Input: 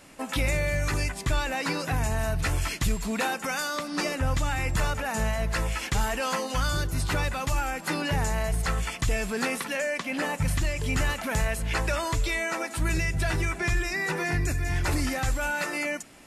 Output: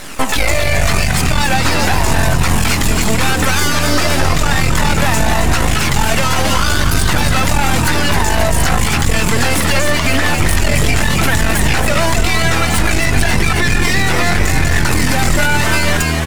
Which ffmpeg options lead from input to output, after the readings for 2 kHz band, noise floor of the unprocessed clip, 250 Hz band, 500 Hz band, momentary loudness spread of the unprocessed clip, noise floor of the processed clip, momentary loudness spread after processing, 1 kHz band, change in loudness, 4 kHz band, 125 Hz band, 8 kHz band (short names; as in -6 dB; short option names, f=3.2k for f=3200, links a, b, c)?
+14.0 dB, -40 dBFS, +14.5 dB, +12.0 dB, 2 LU, -15 dBFS, 1 LU, +14.5 dB, +14.0 dB, +17.0 dB, +13.5 dB, +16.0 dB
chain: -filter_complex "[0:a]lowshelf=f=240:g=-6.5,acompressor=threshold=-31dB:ratio=6,aeval=exprs='max(val(0),0)':c=same,flanger=delay=0.5:depth=1.1:regen=56:speed=0.88:shape=triangular,asplit=9[a][b][c][d][e][f][g][h][i];[b]adelay=267,afreqshift=80,volume=-7dB[j];[c]adelay=534,afreqshift=160,volume=-11.6dB[k];[d]adelay=801,afreqshift=240,volume=-16.2dB[l];[e]adelay=1068,afreqshift=320,volume=-20.7dB[m];[f]adelay=1335,afreqshift=400,volume=-25.3dB[n];[g]adelay=1602,afreqshift=480,volume=-29.9dB[o];[h]adelay=1869,afreqshift=560,volume=-34.5dB[p];[i]adelay=2136,afreqshift=640,volume=-39.1dB[q];[a][j][k][l][m][n][o][p][q]amix=inputs=9:normalize=0,alimiter=level_in=31dB:limit=-1dB:release=50:level=0:latency=1,volume=-1dB"